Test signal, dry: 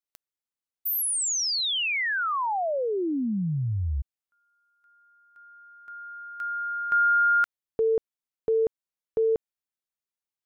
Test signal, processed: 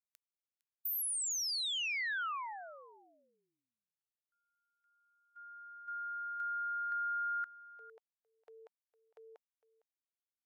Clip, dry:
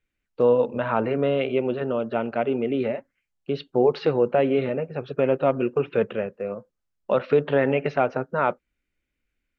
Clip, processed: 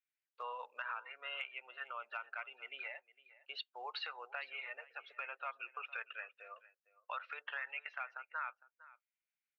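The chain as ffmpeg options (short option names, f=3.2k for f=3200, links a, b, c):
-filter_complex "[0:a]afftdn=nr=16:nf=-36,highpass=f=1.3k:w=0.5412,highpass=f=1.3k:w=1.3066,acompressor=threshold=-39dB:ratio=6:attack=3.5:release=531:knee=6:detection=rms,asplit=2[a][b];[b]aecho=0:1:457:0.112[c];[a][c]amix=inputs=2:normalize=0,volume=3dB"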